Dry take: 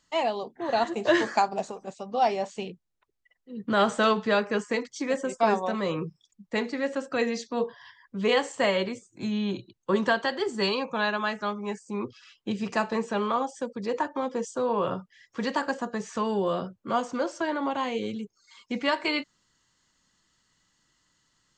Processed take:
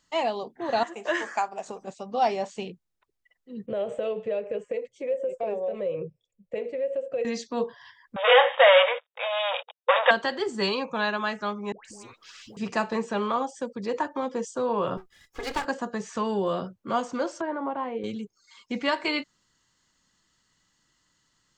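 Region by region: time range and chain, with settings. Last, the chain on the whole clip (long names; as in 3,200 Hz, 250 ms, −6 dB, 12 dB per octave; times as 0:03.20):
0:00.83–0:01.66: high-pass filter 950 Hz 6 dB per octave + parametric band 4,200 Hz −13.5 dB 0.51 octaves
0:03.66–0:07.25: drawn EQ curve 120 Hz 0 dB, 280 Hz −13 dB, 530 Hz +12 dB, 880 Hz −13 dB, 1,400 Hz −18 dB, 2,600 Hz −3 dB, 4,900 Hz −25 dB, 9,100 Hz −13 dB + downward compressor 2.5 to 1, threshold −28 dBFS
0:08.16–0:10.11: leveller curve on the samples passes 5 + linear-phase brick-wall band-pass 470–3,800 Hz
0:11.72–0:12.57: downward compressor 3 to 1, threshold −41 dBFS + all-pass dispersion highs, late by 130 ms, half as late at 900 Hz + every bin compressed towards the loudest bin 2 to 1
0:14.97–0:15.65: lower of the sound and its delayed copy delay 2.4 ms + high-shelf EQ 7,400 Hz +5 dB
0:17.41–0:18.04: low-pass filter 1,300 Hz + low-shelf EQ 170 Hz −10 dB
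whole clip: no processing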